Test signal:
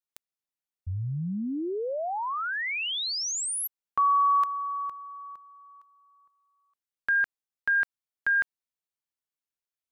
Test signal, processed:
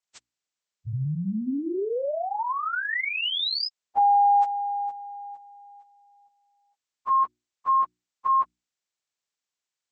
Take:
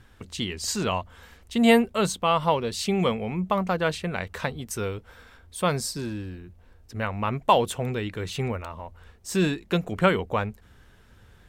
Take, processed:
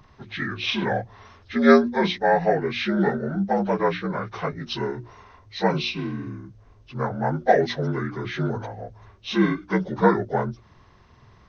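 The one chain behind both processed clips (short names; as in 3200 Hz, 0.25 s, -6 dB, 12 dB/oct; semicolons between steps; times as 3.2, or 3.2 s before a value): inharmonic rescaling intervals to 78%; notches 60/120/180/240/300/360 Hz; gain +4 dB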